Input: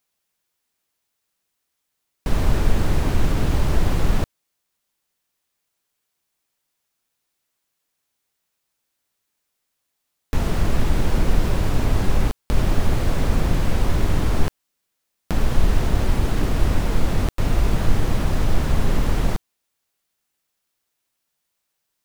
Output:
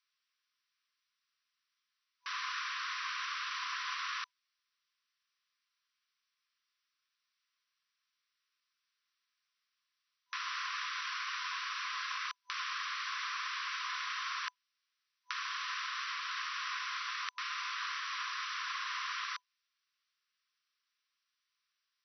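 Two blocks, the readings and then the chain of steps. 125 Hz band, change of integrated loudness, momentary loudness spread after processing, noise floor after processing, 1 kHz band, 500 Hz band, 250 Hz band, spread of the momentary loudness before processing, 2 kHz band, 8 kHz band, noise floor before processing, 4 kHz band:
below −40 dB, −14.0 dB, 3 LU, below −85 dBFS, −7.0 dB, below −40 dB, below −40 dB, 4 LU, −2.5 dB, −11.0 dB, −77 dBFS, −2.5 dB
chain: brick-wall band-pass 1,000–6,000 Hz
level −2.5 dB

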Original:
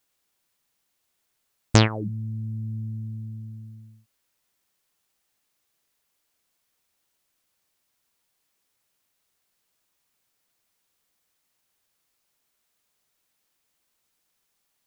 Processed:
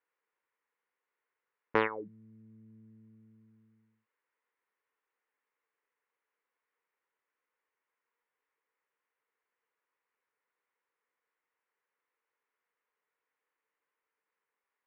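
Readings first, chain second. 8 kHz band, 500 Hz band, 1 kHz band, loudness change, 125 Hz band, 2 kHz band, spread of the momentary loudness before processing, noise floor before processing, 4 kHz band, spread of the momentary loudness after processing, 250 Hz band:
below −35 dB, −4.5 dB, −4.5 dB, −7.0 dB, −29.5 dB, −5.0 dB, 20 LU, −76 dBFS, −20.5 dB, 16 LU, −15.0 dB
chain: loudspeaker in its box 440–2,200 Hz, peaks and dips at 460 Hz +9 dB, 680 Hz −10 dB, 1,000 Hz +5 dB, 1,900 Hz +4 dB
tuned comb filter 720 Hz, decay 0.16 s, harmonics all, mix 50%

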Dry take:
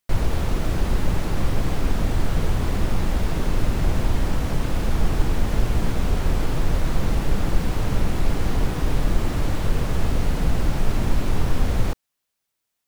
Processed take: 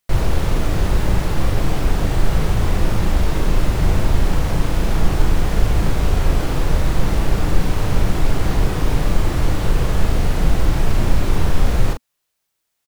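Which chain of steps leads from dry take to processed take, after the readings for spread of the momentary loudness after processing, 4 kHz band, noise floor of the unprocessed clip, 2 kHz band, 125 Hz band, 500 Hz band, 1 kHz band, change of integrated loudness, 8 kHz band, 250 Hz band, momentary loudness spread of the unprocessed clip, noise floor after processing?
2 LU, +4.5 dB, −79 dBFS, +4.5 dB, +4.5 dB, +4.5 dB, +4.5 dB, +4.5 dB, +4.5 dB, +3.5 dB, 1 LU, −75 dBFS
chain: parametric band 240 Hz −6 dB 0.23 octaves
double-tracking delay 38 ms −5 dB
level +3.5 dB

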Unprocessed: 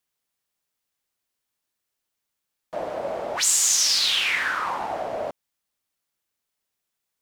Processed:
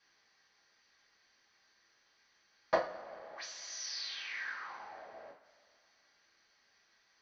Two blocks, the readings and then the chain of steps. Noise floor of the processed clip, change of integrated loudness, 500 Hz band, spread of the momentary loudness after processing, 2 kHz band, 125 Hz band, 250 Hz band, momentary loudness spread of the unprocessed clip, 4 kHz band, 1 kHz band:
−72 dBFS, −18.5 dB, −9.5 dB, 16 LU, −15.0 dB, −14.5 dB, −12.0 dB, 16 LU, −20.0 dB, −13.0 dB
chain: Chebyshev low-pass with heavy ripple 6,200 Hz, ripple 9 dB
low-shelf EQ 130 Hz −6.5 dB
gate with flip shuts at −31 dBFS, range −35 dB
coupled-rooms reverb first 0.31 s, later 2.3 s, from −20 dB, DRR −7 dB
level +13 dB

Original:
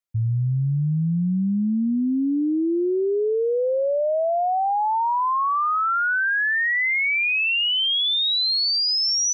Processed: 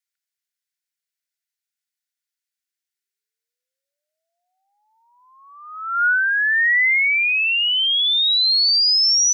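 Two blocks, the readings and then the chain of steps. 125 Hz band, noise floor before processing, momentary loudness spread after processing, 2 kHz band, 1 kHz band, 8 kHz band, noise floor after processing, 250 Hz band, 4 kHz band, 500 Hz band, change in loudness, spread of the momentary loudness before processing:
below −40 dB, −22 dBFS, 5 LU, +4.0 dB, −9.0 dB, can't be measured, below −85 dBFS, below −40 dB, +4.0 dB, below −40 dB, +6.0 dB, 4 LU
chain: Chebyshev high-pass with heavy ripple 1,400 Hz, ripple 3 dB
level +5.5 dB

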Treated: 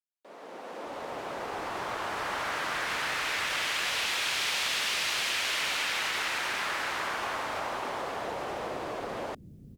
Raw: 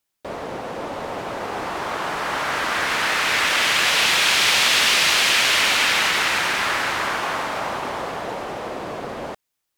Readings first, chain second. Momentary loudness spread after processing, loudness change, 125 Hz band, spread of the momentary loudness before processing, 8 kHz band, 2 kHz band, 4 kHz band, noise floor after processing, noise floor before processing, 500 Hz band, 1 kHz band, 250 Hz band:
11 LU, −12.0 dB, −10.5 dB, 16 LU, −12.0 dB, −11.5 dB, −12.0 dB, −49 dBFS, −78 dBFS, −8.5 dB, −9.5 dB, −10.0 dB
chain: fade in at the beginning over 2.35 s
downward compressor 2.5 to 1, threshold −34 dBFS, peak gain reduction 13 dB
multiband delay without the direct sound highs, lows 600 ms, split 200 Hz

